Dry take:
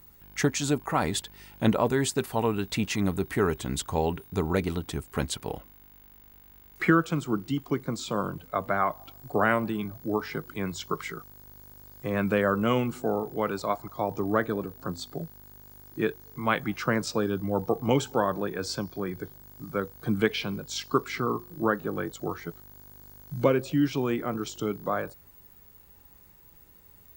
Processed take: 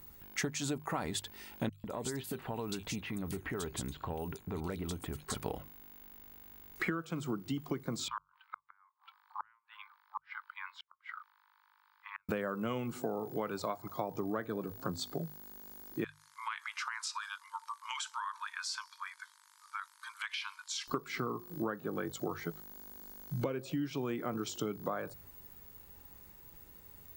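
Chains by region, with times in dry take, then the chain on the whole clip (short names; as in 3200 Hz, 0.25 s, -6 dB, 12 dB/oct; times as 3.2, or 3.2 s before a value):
1.69–5.35 compressor, threshold -34 dBFS + bands offset in time highs, lows 0.15 s, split 3100 Hz
8.08–12.29 steep high-pass 900 Hz 96 dB/oct + flipped gate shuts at -24 dBFS, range -38 dB + air absorption 430 m
16.04–20.88 brick-wall FIR band-pass 890–12000 Hz + compressor 5:1, threshold -34 dBFS
whole clip: notches 50/100/150 Hz; compressor 10:1, threshold -32 dBFS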